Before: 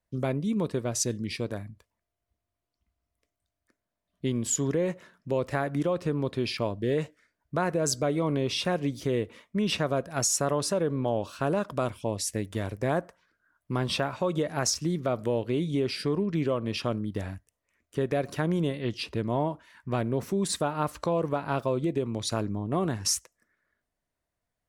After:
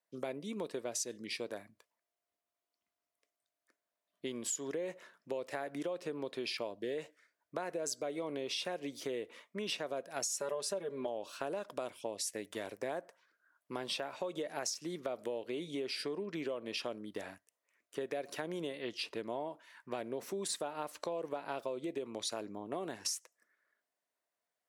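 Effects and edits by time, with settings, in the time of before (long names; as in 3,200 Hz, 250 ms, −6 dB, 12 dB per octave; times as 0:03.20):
0:10.39–0:11.07: comb filter 5 ms, depth 95%
whole clip: high-pass filter 420 Hz 12 dB per octave; dynamic equaliser 1,200 Hz, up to −7 dB, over −47 dBFS, Q 1.8; downward compressor, threshold −32 dBFS; level −2.5 dB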